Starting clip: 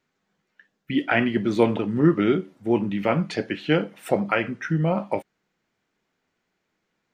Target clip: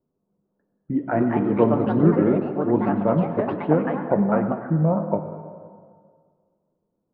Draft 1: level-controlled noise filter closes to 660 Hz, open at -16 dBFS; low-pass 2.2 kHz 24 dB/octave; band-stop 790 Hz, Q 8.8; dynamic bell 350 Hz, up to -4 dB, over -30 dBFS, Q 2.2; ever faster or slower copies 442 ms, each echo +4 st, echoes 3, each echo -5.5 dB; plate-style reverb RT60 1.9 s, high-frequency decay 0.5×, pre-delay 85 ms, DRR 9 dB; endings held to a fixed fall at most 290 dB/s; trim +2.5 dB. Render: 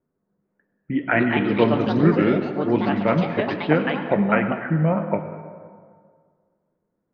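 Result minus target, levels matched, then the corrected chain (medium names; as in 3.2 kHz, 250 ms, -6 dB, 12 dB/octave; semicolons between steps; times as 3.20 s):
2 kHz band +10.5 dB
level-controlled noise filter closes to 660 Hz, open at -16 dBFS; low-pass 1.1 kHz 24 dB/octave; band-stop 790 Hz, Q 8.8; dynamic bell 350 Hz, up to -4 dB, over -30 dBFS, Q 2.2; ever faster or slower copies 442 ms, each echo +4 st, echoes 3, each echo -5.5 dB; plate-style reverb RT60 1.9 s, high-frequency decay 0.5×, pre-delay 85 ms, DRR 9 dB; endings held to a fixed fall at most 290 dB/s; trim +2.5 dB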